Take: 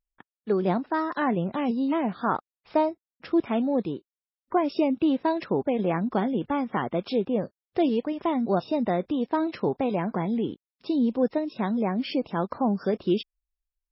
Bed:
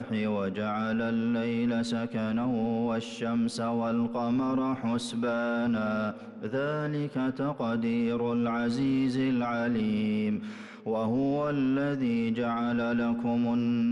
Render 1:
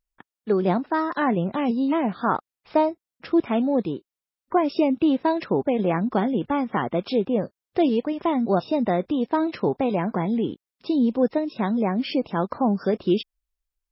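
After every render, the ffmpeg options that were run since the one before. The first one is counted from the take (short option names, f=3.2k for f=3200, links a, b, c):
-af "volume=3dB"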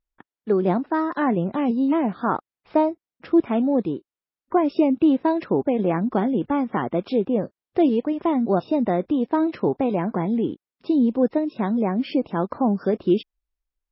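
-af "lowpass=f=2.3k:p=1,equalizer=f=310:t=o:w=0.7:g=3"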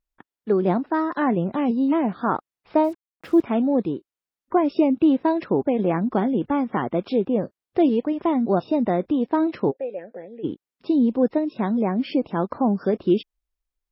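-filter_complex "[0:a]asettb=1/sr,asplit=3[a][b][c];[a]atrim=end=2.844[d];[b]atrim=start=2.84:end=3.43,asetpts=PTS-STARTPTS,afade=t=in:d=0.004:c=qsin,afade=t=out:st=0.586:d=0.004:c=qsin,acrusher=bits=7:mix=0:aa=0.5[e];[c]atrim=start=3.426[f];[d][e]acrossfade=d=0.004:c1=hsin:c2=qsin[g];[g][f]acrossfade=d=0.004:c1=qsin:c2=hsin,asplit=3[h][i][j];[h]afade=t=out:st=9.7:d=0.02[k];[i]asplit=3[l][m][n];[l]bandpass=f=530:t=q:w=8,volume=0dB[o];[m]bandpass=f=1.84k:t=q:w=8,volume=-6dB[p];[n]bandpass=f=2.48k:t=q:w=8,volume=-9dB[q];[o][p][q]amix=inputs=3:normalize=0,afade=t=in:st=9.7:d=0.02,afade=t=out:st=10.43:d=0.02[r];[j]afade=t=in:st=10.43:d=0.02[s];[k][r][s]amix=inputs=3:normalize=0"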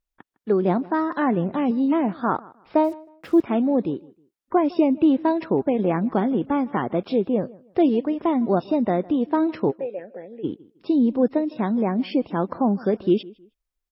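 -filter_complex "[0:a]asplit=2[a][b];[b]adelay=157,lowpass=f=2.9k:p=1,volume=-22dB,asplit=2[c][d];[d]adelay=157,lowpass=f=2.9k:p=1,volume=0.27[e];[a][c][e]amix=inputs=3:normalize=0"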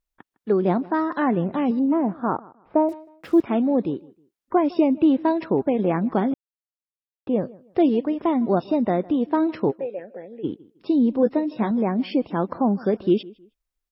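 -filter_complex "[0:a]asettb=1/sr,asplit=3[a][b][c];[a]atrim=end=1.794[d];[b]atrim=start=1.79:end=2.89,asetpts=PTS-STARTPTS,afade=t=in:d=0.004:c=qsin,afade=t=out:st=1.096:d=0.004:c=qsin,lowpass=1.2k[e];[c]atrim=start=2.886[f];[d][e]acrossfade=d=0.004:c1=hsin:c2=qsin[g];[g][f]acrossfade=d=0.004:c1=qsin:c2=hsin,asettb=1/sr,asplit=3[h][i][j];[h]atrim=end=11.214[k];[i]atrim=start=11.21:end=11.71,asetpts=PTS-STARTPTS,afade=t=in:d=0.004:c=qsin,afade=t=out:st=0.496:d=0.004:c=qsin,asplit=2[l][m];[m]adelay=14,volume=-7dB[n];[l][n]amix=inputs=2:normalize=0,atrim=end_sample=22050[o];[j]atrim=start=11.706[p];[k][o]acrossfade=d=0.004:c1=hsin:c2=qsin[q];[q][p]acrossfade=d=0.004:c1=qsin:c2=hsin,asplit=3[r][s][t];[r]atrim=end=6.34,asetpts=PTS-STARTPTS,afade=t=out:st=6.336:d=0.004:c=hsin[u];[s]atrim=start=6.34:end=7.27,asetpts=PTS-STARTPTS,volume=0[v];[t]atrim=start=7.27,asetpts=PTS-STARTPTS,afade=t=in:d=0.004:c=hsin[w];[u][v][w]concat=n=3:v=0:a=1"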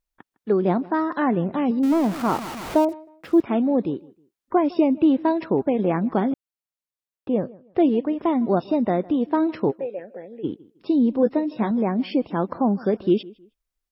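-filter_complex "[0:a]asettb=1/sr,asplit=3[a][b][c];[a]atrim=end=1.834[d];[b]atrim=start=1.83:end=2.85,asetpts=PTS-STARTPTS,afade=t=in:d=0.004:c=qsin,afade=t=out:st=1.016:d=0.004:c=qsin,aeval=exprs='val(0)+0.5*0.0422*sgn(val(0))':c=same[e];[c]atrim=start=2.846[f];[d][e]acrossfade=d=0.004:c1=hsin:c2=qsin[g];[g][f]acrossfade=d=0.004:c1=qsin:c2=hsin,asettb=1/sr,asplit=3[h][i][j];[h]atrim=end=7.384[k];[i]atrim=start=7.38:end=8.19,asetpts=PTS-STARTPTS,afade=t=in:d=0.004:c=qsin,afade=t=out:st=0.806:d=0.004:c=qsin,lowpass=3.6k[l];[j]atrim=start=8.186[m];[k][l]acrossfade=d=0.004:c1=hsin:c2=qsin[n];[n][m]acrossfade=d=0.004:c1=qsin:c2=hsin"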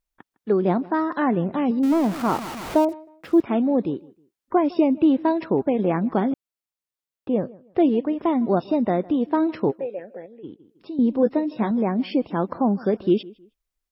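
-filter_complex "[0:a]asettb=1/sr,asplit=3[a][b][c];[a]atrim=end=10.264[d];[b]atrim=start=10.26:end=10.99,asetpts=PTS-STARTPTS,afade=t=in:d=0.004:c=qsin,afade=t=out:st=0.726:d=0.004:c=qsin,acompressor=threshold=-52dB:ratio=1.5:attack=3.2:release=140:knee=1:detection=peak[e];[c]atrim=start=10.986[f];[d][e]acrossfade=d=0.004:c1=hsin:c2=qsin[g];[g][f]acrossfade=d=0.004:c1=qsin:c2=hsin"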